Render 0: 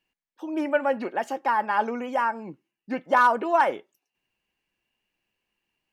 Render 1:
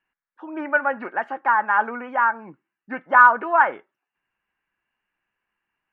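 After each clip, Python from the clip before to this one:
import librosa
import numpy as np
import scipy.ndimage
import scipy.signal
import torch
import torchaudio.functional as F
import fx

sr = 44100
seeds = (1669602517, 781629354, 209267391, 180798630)

y = fx.curve_eq(x, sr, hz=(540.0, 1500.0, 7200.0), db=(0, 14, -26))
y = F.gain(torch.from_numpy(y), -3.5).numpy()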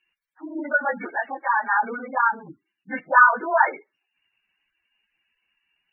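y = fx.phase_scramble(x, sr, seeds[0], window_ms=50)
y = fx.spec_gate(y, sr, threshold_db=-15, keep='strong')
y = fx.high_shelf_res(y, sr, hz=2000.0, db=13.0, q=1.5)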